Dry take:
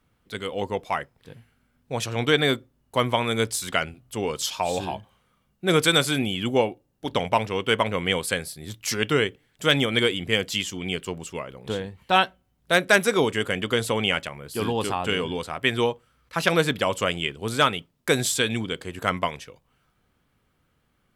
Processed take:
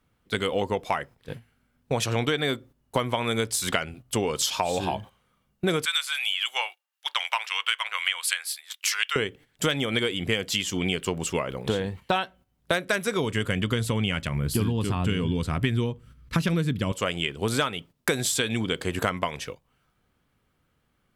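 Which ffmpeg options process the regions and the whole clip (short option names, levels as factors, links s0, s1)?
-filter_complex "[0:a]asettb=1/sr,asplit=3[s0][s1][s2];[s0]atrim=end=5.854[s3];[s1]atrim=start=5.85:end=9.16,asetpts=PTS-STARTPTS,afade=t=in:d=0.004:c=qsin,afade=t=out:st=3.306:d=0.004:c=qsin,equalizer=f=2800:w=1.5:g=4,acrossover=split=1900[s4][s5];[s4]aeval=exprs='val(0)*(1-0.5/2+0.5/2*cos(2*PI*3.9*n/s))':c=same[s6];[s5]aeval=exprs='val(0)*(1-0.5/2-0.5/2*cos(2*PI*3.9*n/s))':c=same[s7];[s6][s7]amix=inputs=2:normalize=0,highpass=f=1100:w=0.5412,highpass=f=1100:w=1.3066[s8];[s2]atrim=start=9.156[s9];[s3][s8]acrossfade=d=0.004:c1=hsin:c2=qsin[s10];[s10][s9]acrossfade=d=0.004:c1=qsin:c2=hsin,asettb=1/sr,asplit=3[s11][s12][s13];[s11]atrim=end=12.794[s14];[s12]atrim=start=12.79:end=16.92,asetpts=PTS-STARTPTS,afade=t=in:d=0.004:c=qsin,afade=t=out:st=4.126:d=0.004:c=qsin,asubboost=boost=9.5:cutoff=230,bandreject=f=800:w=12[s15];[s13]atrim=start=16.916[s16];[s14][s15]acrossfade=d=0.004:c1=hsin:c2=qsin[s17];[s17][s16]acrossfade=d=0.004:c1=qsin:c2=hsin,agate=range=0.282:threshold=0.00631:ratio=16:detection=peak,acompressor=threshold=0.0282:ratio=10,volume=2.82"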